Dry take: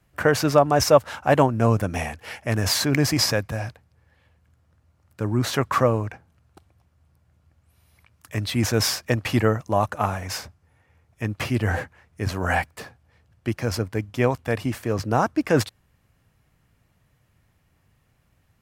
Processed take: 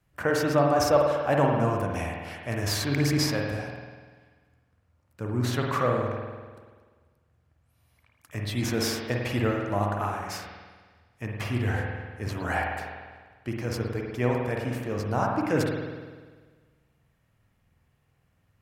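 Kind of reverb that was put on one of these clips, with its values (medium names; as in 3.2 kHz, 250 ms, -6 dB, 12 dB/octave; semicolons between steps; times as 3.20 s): spring tank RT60 1.5 s, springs 49 ms, chirp 70 ms, DRR -0.5 dB; trim -7.5 dB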